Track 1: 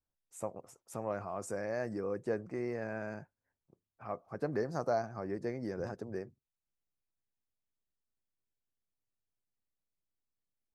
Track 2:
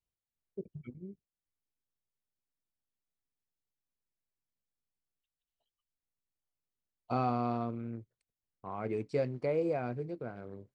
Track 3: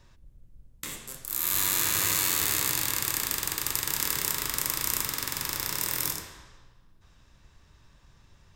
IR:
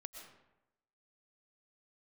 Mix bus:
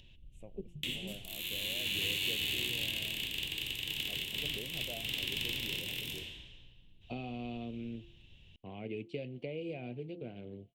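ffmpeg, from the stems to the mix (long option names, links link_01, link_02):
-filter_complex "[0:a]volume=-9.5dB[link_01];[1:a]bandreject=frequency=171.6:width_type=h:width=4,bandreject=frequency=343.2:width_type=h:width=4,bandreject=frequency=514.8:width_type=h:width=4,bandreject=frequency=686.4:width_type=h:width=4,bandreject=frequency=858:width_type=h:width=4,bandreject=frequency=1029.6:width_type=h:width=4,bandreject=frequency=1201.2:width_type=h:width=4,bandreject=frequency=1372.8:width_type=h:width=4,acrossover=split=200|1900[link_02][link_03][link_04];[link_02]acompressor=threshold=-52dB:ratio=4[link_05];[link_03]acompressor=threshold=-38dB:ratio=4[link_06];[link_04]acompressor=threshold=-58dB:ratio=4[link_07];[link_05][link_06][link_07]amix=inputs=3:normalize=0,volume=2.5dB[link_08];[2:a]alimiter=limit=-15dB:level=0:latency=1:release=118,volume=-1.5dB[link_09];[link_01][link_08][link_09]amix=inputs=3:normalize=0,firequalizer=gain_entry='entry(210,0);entry(740,-9);entry(1200,-23);entry(2900,15);entry(4900,-12)':delay=0.05:min_phase=1,acompressor=mode=upward:threshold=-58dB:ratio=2.5"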